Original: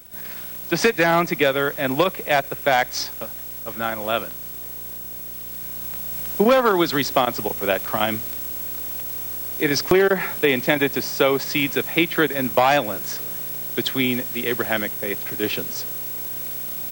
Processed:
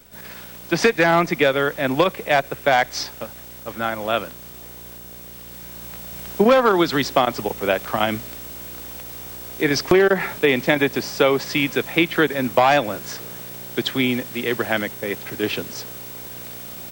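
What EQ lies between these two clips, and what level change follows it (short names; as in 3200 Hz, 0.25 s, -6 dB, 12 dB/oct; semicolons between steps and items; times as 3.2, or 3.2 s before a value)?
high shelf 9100 Hz -10 dB; +1.5 dB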